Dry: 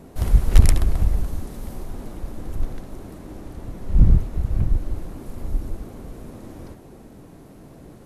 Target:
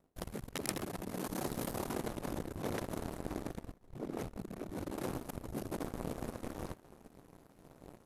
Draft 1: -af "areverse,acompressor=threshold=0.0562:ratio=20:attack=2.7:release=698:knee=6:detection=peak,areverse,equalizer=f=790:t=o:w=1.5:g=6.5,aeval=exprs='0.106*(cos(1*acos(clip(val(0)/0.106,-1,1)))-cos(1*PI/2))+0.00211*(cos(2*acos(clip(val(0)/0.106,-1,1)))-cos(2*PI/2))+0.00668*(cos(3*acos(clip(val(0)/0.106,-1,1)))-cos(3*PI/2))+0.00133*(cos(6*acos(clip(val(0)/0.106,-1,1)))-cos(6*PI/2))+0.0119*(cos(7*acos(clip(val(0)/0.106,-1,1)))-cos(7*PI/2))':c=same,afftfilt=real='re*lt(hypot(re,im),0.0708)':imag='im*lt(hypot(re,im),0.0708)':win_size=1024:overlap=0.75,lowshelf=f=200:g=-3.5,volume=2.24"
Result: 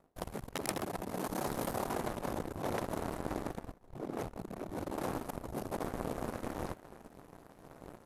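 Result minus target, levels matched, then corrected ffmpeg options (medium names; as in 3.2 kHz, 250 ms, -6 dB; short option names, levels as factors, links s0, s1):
1 kHz band +3.5 dB
-af "areverse,acompressor=threshold=0.0562:ratio=20:attack=2.7:release=698:knee=6:detection=peak,areverse,aeval=exprs='0.106*(cos(1*acos(clip(val(0)/0.106,-1,1)))-cos(1*PI/2))+0.00211*(cos(2*acos(clip(val(0)/0.106,-1,1)))-cos(2*PI/2))+0.00668*(cos(3*acos(clip(val(0)/0.106,-1,1)))-cos(3*PI/2))+0.00133*(cos(6*acos(clip(val(0)/0.106,-1,1)))-cos(6*PI/2))+0.0119*(cos(7*acos(clip(val(0)/0.106,-1,1)))-cos(7*PI/2))':c=same,afftfilt=real='re*lt(hypot(re,im),0.0708)':imag='im*lt(hypot(re,im),0.0708)':win_size=1024:overlap=0.75,lowshelf=f=200:g=-3.5,volume=2.24"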